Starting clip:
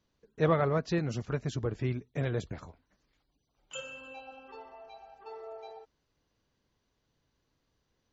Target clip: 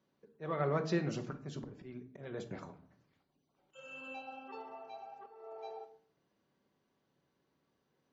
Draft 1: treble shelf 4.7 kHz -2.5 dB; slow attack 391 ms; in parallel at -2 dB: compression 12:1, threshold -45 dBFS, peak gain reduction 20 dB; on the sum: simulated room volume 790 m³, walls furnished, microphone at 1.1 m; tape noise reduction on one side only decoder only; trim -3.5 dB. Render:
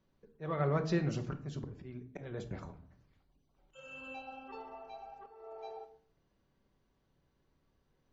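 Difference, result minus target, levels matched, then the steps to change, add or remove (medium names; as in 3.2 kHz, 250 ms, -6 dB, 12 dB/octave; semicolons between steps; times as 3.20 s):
125 Hz band +2.5 dB
add first: high-pass 170 Hz 12 dB/octave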